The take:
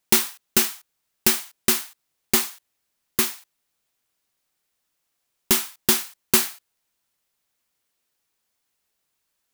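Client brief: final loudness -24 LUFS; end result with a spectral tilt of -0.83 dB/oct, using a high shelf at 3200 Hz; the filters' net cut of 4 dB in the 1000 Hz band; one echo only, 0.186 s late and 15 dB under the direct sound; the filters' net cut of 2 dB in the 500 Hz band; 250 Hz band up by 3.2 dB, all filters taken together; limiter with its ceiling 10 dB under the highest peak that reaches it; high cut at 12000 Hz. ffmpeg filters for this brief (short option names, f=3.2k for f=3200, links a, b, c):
-af "lowpass=12k,equalizer=f=250:t=o:g=5.5,equalizer=f=500:t=o:g=-6.5,equalizer=f=1k:t=o:g=-4.5,highshelf=f=3.2k:g=4.5,alimiter=limit=-10dB:level=0:latency=1,aecho=1:1:186:0.178,volume=1dB"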